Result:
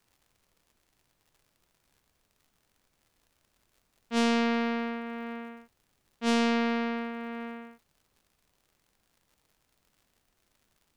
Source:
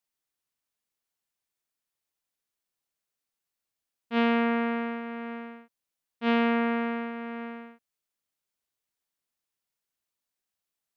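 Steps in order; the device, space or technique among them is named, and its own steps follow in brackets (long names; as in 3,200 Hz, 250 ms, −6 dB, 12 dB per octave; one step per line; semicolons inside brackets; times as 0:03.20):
record under a worn stylus (stylus tracing distortion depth 0.12 ms; surface crackle 99 per second −52 dBFS; pink noise bed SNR 40 dB)
level −1 dB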